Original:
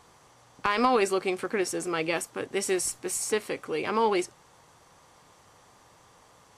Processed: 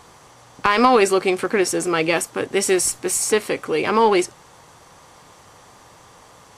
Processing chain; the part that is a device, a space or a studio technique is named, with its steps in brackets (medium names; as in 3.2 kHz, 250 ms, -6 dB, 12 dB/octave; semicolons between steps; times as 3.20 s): parallel distortion (in parallel at -13.5 dB: hard clipper -27.5 dBFS, distortion -7 dB); on the sum: trim +8 dB